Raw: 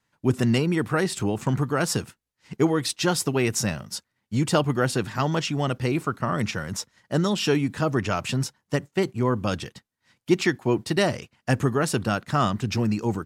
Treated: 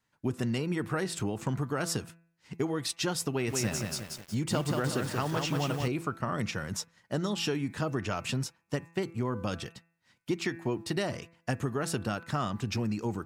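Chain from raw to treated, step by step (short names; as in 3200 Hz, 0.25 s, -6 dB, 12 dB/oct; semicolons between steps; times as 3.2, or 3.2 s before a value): de-hum 167.2 Hz, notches 16; compressor, threshold -23 dBFS, peak gain reduction 9 dB; 3.3–5.88 lo-fi delay 0.182 s, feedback 55%, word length 7-bit, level -3 dB; gain -4 dB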